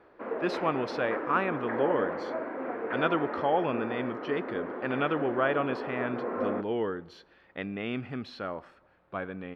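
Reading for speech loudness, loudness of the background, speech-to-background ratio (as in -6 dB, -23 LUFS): -32.0 LUFS, -35.0 LUFS, 3.0 dB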